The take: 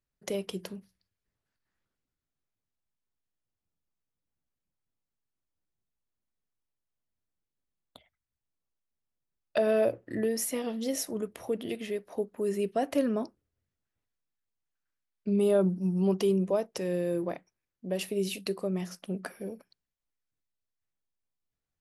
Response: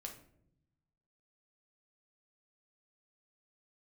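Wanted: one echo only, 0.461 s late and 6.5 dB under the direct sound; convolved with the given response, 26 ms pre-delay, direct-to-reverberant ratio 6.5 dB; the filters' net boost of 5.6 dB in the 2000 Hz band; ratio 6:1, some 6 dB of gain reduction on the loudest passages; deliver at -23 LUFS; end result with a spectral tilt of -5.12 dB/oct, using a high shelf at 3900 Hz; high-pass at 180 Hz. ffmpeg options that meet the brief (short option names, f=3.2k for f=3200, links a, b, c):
-filter_complex "[0:a]highpass=180,equalizer=f=2k:t=o:g=8.5,highshelf=f=3.9k:g=-5,acompressor=threshold=-27dB:ratio=6,aecho=1:1:461:0.473,asplit=2[a][b];[1:a]atrim=start_sample=2205,adelay=26[c];[b][c]afir=irnorm=-1:irlink=0,volume=-3dB[d];[a][d]amix=inputs=2:normalize=0,volume=10dB"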